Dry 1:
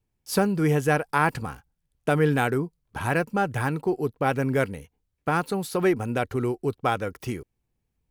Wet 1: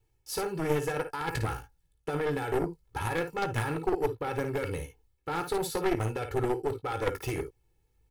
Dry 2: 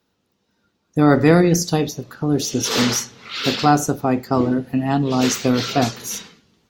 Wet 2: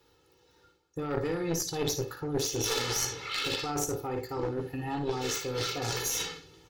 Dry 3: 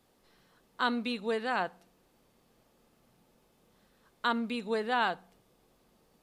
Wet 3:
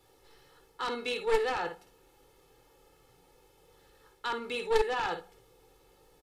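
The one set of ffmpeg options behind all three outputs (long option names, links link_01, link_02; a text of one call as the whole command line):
ffmpeg -i in.wav -af "areverse,acompressor=threshold=-31dB:ratio=4,areverse,alimiter=level_in=2.5dB:limit=-24dB:level=0:latency=1:release=31,volume=-2.5dB,aecho=1:1:2.3:0.98,aecho=1:1:18|55|73:0.316|0.398|0.158,aeval=exprs='0.112*(cos(1*acos(clip(val(0)/0.112,-1,1)))-cos(1*PI/2))+0.0501*(cos(4*acos(clip(val(0)/0.112,-1,1)))-cos(4*PI/2))+0.0251*(cos(6*acos(clip(val(0)/0.112,-1,1)))-cos(6*PI/2))':channel_layout=same,volume=1.5dB" out.wav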